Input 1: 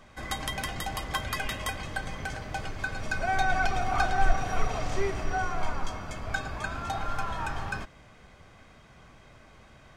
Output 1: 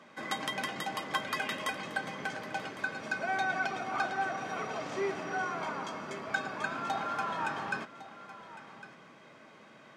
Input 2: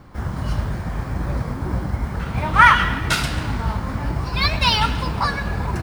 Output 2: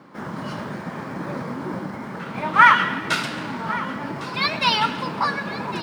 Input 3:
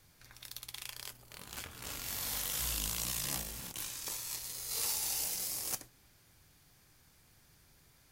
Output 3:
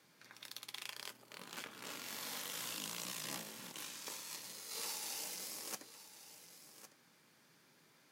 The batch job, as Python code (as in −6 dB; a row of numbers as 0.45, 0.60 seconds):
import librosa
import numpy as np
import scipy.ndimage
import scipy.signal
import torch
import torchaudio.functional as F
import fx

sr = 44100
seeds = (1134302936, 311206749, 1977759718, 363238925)

p1 = scipy.signal.sosfilt(scipy.signal.butter(4, 180.0, 'highpass', fs=sr, output='sos'), x)
p2 = p1 + fx.echo_single(p1, sr, ms=1106, db=-16.0, dry=0)
p3 = fx.rider(p2, sr, range_db=3, speed_s=2.0)
p4 = fx.lowpass(p3, sr, hz=3900.0, slope=6)
p5 = fx.notch(p4, sr, hz=730.0, q=12.0)
y = p5 * 10.0 ** (-1.5 / 20.0)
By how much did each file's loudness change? −3.0, −1.5, −8.0 LU